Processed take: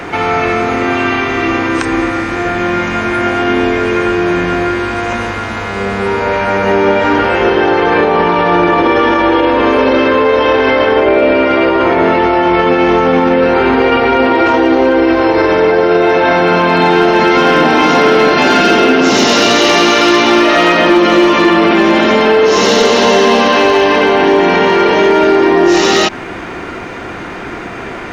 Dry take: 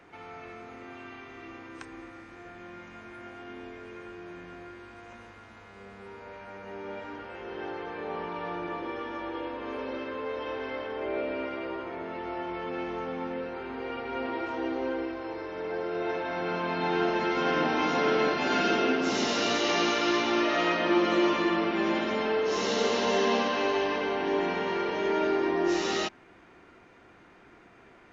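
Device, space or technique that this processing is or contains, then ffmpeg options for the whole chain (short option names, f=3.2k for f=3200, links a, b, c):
loud club master: -af "acompressor=threshold=-29dB:ratio=2.5,asoftclip=type=hard:threshold=-24dB,alimiter=level_in=32dB:limit=-1dB:release=50:level=0:latency=1,volume=-1dB"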